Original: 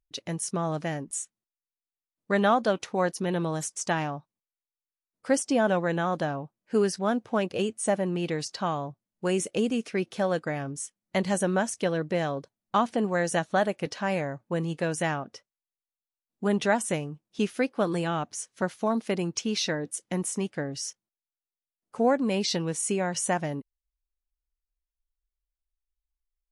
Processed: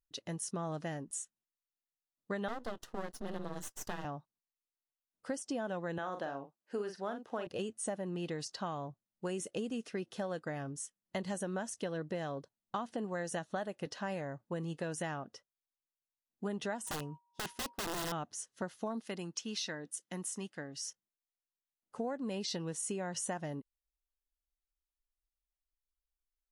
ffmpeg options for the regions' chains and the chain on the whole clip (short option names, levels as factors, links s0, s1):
-filter_complex "[0:a]asettb=1/sr,asplit=3[s0][s1][s2];[s0]atrim=end=2.484[s3];[s1]atrim=start=2.48:end=4.05,asetpts=PTS-STARTPTS,afade=t=in:d=0.004:c=qsin,afade=t=out:st=1.566:d=0.004:c=qsin,asuperstop=centerf=2300:order=12:qfactor=2.9,afreqshift=19,aeval=exprs='max(val(0),0)':c=same[s4];[s2]atrim=start=4.046[s5];[s3][s4]acrossfade=d=0.004:c1=hsin:c2=qsin[s6];[s6][s5]acrossfade=d=0.004:c1=qsin:c2=hsin,asettb=1/sr,asplit=3[s7][s8][s9];[s7]atrim=end=5.984[s10];[s8]atrim=start=5.98:end=7.47,asetpts=PTS-STARTPTS,afade=t=in:d=0.004:c=qsin,afade=t=out:st=1.486:d=0.004:c=qsin,acrossover=split=3900[s11][s12];[s12]acompressor=threshold=0.00224:ratio=4:attack=1:release=60[s13];[s11][s13]amix=inputs=2:normalize=0,highpass=290,asplit=2[s14][s15];[s15]adelay=43,volume=0.376[s16];[s14][s16]amix=inputs=2:normalize=0,atrim=end_sample=65709[s17];[s9]atrim=start=7.466[s18];[s10][s17]acrossfade=d=0.004:c1=hsin:c2=qsin[s19];[s19][s18]acrossfade=d=0.004:c1=qsin:c2=hsin,asettb=1/sr,asplit=3[s20][s21][s22];[s20]atrim=end=16.864[s23];[s21]atrim=start=16.86:end=18.12,asetpts=PTS-STARTPTS,afade=t=in:d=0.004:c=qsin,afade=t=out:st=1.256:d=0.004:c=qsin,aeval=exprs='val(0)+0.00398*sin(2*PI*950*n/s)':c=same,agate=range=0.0224:threshold=0.01:ratio=3:release=100:detection=peak,aeval=exprs='(mod(15.8*val(0)+1,2)-1)/15.8':c=same[s24];[s22]atrim=start=18.116[s25];[s23][s24]acrossfade=d=0.004:c1=hsin:c2=qsin[s26];[s26][s25]acrossfade=d=0.004:c1=qsin:c2=hsin,asettb=1/sr,asplit=3[s27][s28][s29];[s27]atrim=end=19.004[s30];[s28]atrim=start=19:end=20.79,asetpts=PTS-STARTPTS,afade=t=in:d=0.004:c=qsin,afade=t=out:st=1.786:d=0.004:c=qsin,highpass=190,equalizer=f=460:w=0.65:g=-6.5[s31];[s29]atrim=start=20.786[s32];[s30][s31]acrossfade=d=0.004:c1=hsin:c2=qsin[s33];[s33][s32]acrossfade=d=0.004:c1=qsin:c2=hsin,bandreject=f=2300:w=7.1,acompressor=threshold=0.0447:ratio=6,volume=0.447"